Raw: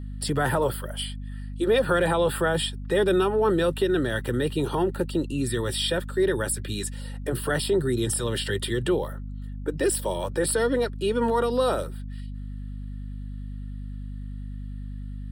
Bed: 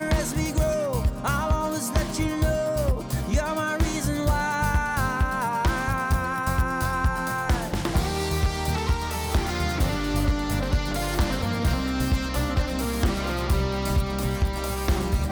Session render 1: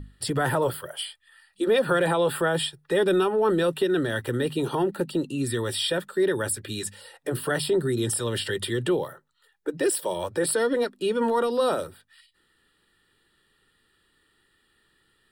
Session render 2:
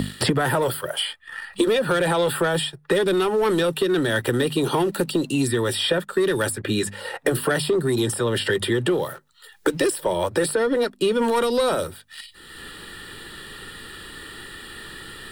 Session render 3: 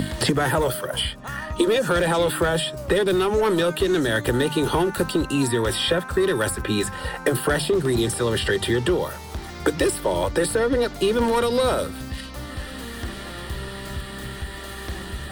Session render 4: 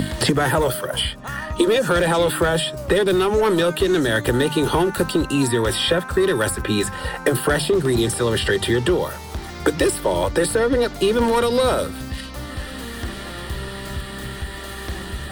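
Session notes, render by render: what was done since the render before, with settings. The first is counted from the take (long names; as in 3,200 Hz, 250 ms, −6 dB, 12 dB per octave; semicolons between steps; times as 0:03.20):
mains-hum notches 50/100/150/200/250 Hz
leveller curve on the samples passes 1; multiband upward and downward compressor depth 100%
mix in bed −9 dB
level +2.5 dB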